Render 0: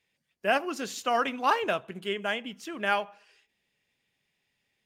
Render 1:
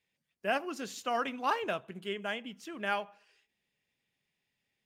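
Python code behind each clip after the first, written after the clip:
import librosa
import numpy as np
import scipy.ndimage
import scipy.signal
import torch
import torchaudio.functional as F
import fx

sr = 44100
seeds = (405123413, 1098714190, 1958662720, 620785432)

y = fx.peak_eq(x, sr, hz=170.0, db=2.5, octaves=1.6)
y = y * librosa.db_to_amplitude(-6.0)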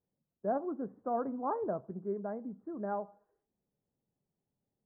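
y = scipy.ndimage.gaussian_filter1d(x, 10.0, mode='constant')
y = y * librosa.db_to_amplitude(3.5)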